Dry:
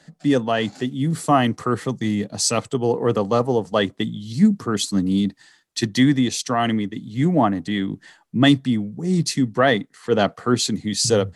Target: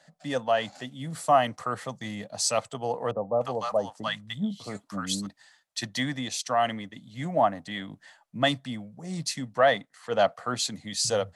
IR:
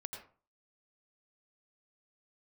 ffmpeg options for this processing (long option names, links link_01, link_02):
-filter_complex "[0:a]lowshelf=frequency=480:width_type=q:width=3:gain=-7,asettb=1/sr,asplit=3[link_01][link_02][link_03];[link_01]atrim=end=3.114[link_04];[link_02]atrim=start=3.11:end=5.27,asetpts=PTS-STARTPTS,afade=type=in:duration=0.004:curve=qsin,afade=type=out:start_time=2.156:duration=0.004:curve=qsin,acrossover=split=890[link_05][link_06];[link_06]adelay=300[link_07];[link_05][link_07]amix=inputs=2:normalize=0,atrim=end_sample=95256[link_08];[link_03]atrim=start=5.266[link_09];[link_04][link_08]acrossfade=duration=0.004:curve1=hsin:curve2=qsin[link_10];[link_10][link_09]acrossfade=duration=0.004:curve1=qsin:curve2=hsin,volume=-6dB"